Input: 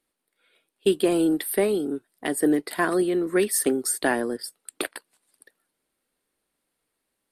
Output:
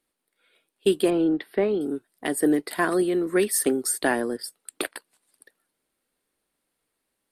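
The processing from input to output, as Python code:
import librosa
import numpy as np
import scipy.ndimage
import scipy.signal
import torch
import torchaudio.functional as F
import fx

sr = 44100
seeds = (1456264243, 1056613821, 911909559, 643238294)

y = fx.air_absorb(x, sr, metres=290.0, at=(1.1, 1.81))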